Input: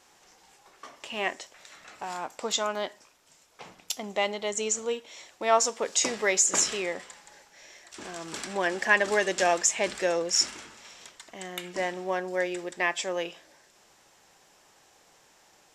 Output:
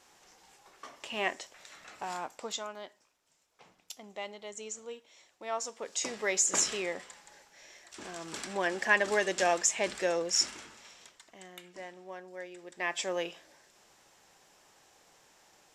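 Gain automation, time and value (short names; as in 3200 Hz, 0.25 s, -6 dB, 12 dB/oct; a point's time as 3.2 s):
2.15 s -2 dB
2.76 s -13 dB
5.55 s -13 dB
6.52 s -3.5 dB
10.75 s -3.5 dB
11.81 s -15 dB
12.56 s -15 dB
13 s -2.5 dB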